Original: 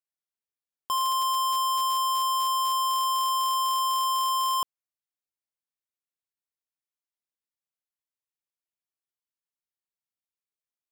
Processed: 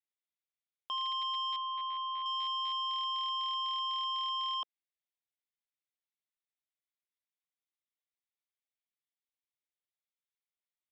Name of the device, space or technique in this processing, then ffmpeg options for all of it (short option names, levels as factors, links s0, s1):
phone earpiece: -filter_complex "[0:a]asettb=1/sr,asplit=3[s0][s1][s2];[s0]atrim=end=1.564[s3];[s1]atrim=start=1.56:end=2.26,asetpts=PTS-STARTPTS,afade=t=in:d=0.004:c=qsin,afade=t=out:st=0.696:d=0.004:c=qsin,acrossover=split=190 3100:gain=0.2 1 0.0631[s4][s5][s6];[s4][s5][s6]amix=inputs=3:normalize=0[s7];[s2]atrim=start=2.256[s8];[s3][s7]acrossfade=d=0.004:c1=hsin:c2=qsin[s9];[s9][s8]acrossfade=d=0.004:c1=qsin:c2=hsin,highpass=390,equalizer=f=450:t=q:w=4:g=-10,equalizer=f=970:t=q:w=4:g=-8,equalizer=f=1500:t=q:w=4:g=-6,equalizer=f=2100:t=q:w=4:g=6,equalizer=f=3600:t=q:w=4:g=8,lowpass=f=3700:w=0.5412,lowpass=f=3700:w=1.3066,volume=0.562"